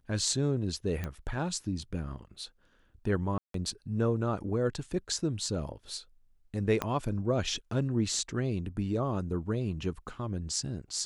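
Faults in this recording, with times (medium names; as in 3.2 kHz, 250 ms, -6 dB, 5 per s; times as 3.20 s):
1.04 s: pop -21 dBFS
3.38–3.54 s: dropout 163 ms
6.82 s: pop -15 dBFS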